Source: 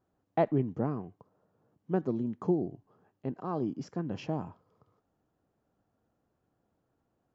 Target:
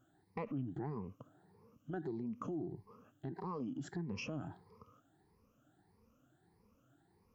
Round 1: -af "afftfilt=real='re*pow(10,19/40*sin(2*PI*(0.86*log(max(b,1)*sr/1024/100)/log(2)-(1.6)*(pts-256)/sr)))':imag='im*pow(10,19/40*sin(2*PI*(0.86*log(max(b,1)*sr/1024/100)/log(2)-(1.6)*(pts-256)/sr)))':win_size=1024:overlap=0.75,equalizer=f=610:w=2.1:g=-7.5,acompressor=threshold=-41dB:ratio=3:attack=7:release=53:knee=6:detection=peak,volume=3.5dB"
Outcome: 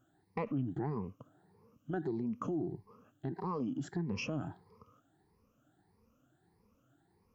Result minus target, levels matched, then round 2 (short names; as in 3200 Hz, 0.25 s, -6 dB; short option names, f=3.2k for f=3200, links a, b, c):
compressor: peak gain reduction -5 dB
-af "afftfilt=real='re*pow(10,19/40*sin(2*PI*(0.86*log(max(b,1)*sr/1024/100)/log(2)-(1.6)*(pts-256)/sr)))':imag='im*pow(10,19/40*sin(2*PI*(0.86*log(max(b,1)*sr/1024/100)/log(2)-(1.6)*(pts-256)/sr)))':win_size=1024:overlap=0.75,equalizer=f=610:w=2.1:g=-7.5,acompressor=threshold=-48.5dB:ratio=3:attack=7:release=53:knee=6:detection=peak,volume=3.5dB"